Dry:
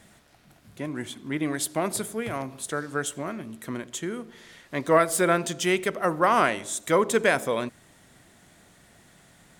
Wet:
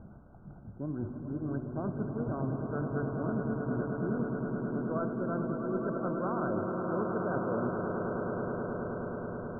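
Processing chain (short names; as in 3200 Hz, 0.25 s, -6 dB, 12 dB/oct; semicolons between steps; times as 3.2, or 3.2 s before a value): Wiener smoothing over 15 samples; low shelf 270 Hz +11.5 dB; reverse; compressor 12:1, threshold -32 dBFS, peak gain reduction 20.5 dB; reverse; brick-wall FIR low-pass 1600 Hz; on a send: swelling echo 0.106 s, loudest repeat 8, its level -8.5 dB; on the sum: attack slew limiter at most 480 dB/s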